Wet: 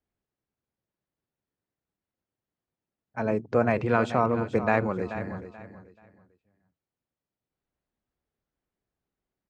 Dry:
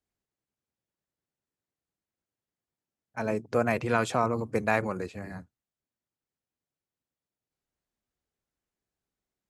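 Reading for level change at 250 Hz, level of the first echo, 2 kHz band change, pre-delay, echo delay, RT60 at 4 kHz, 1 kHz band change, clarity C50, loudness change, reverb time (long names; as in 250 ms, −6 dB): +4.0 dB, −12.0 dB, +0.5 dB, no reverb audible, 433 ms, no reverb audible, +2.0 dB, no reverb audible, +2.5 dB, no reverb audible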